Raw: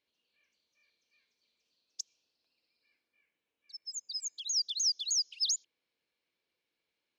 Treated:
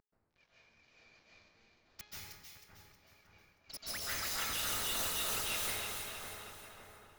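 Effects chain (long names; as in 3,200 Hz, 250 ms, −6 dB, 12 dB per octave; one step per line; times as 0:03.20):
variable-slope delta modulation 32 kbit/s
pitch vibrato 13 Hz 39 cents
in parallel at 0 dB: brickwall limiter −30 dBFS, peak gain reduction 8 dB
on the sum: soft clipping −22 dBFS, distortion −20 dB
hum removal 418.6 Hz, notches 10
wave folding −39 dBFS
on a send: echo with a time of its own for lows and highs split 1,900 Hz, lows 561 ms, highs 315 ms, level −5.5 dB
on the sum: dense smooth reverb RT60 1.5 s, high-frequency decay 0.65×, pre-delay 120 ms, DRR −8 dB
one half of a high-frequency compander decoder only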